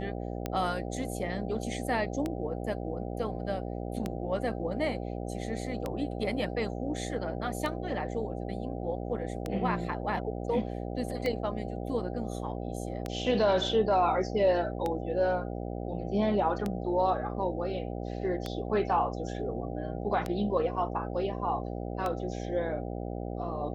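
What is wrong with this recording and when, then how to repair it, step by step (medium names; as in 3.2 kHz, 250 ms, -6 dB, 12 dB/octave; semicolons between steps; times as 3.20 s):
buzz 60 Hz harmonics 13 -36 dBFS
tick 33 1/3 rpm -18 dBFS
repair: de-click; de-hum 60 Hz, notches 13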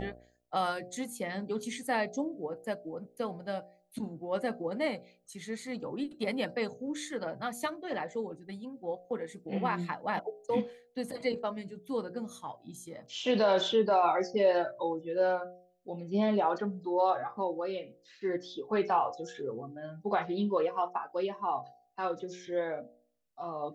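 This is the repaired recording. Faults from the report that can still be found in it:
nothing left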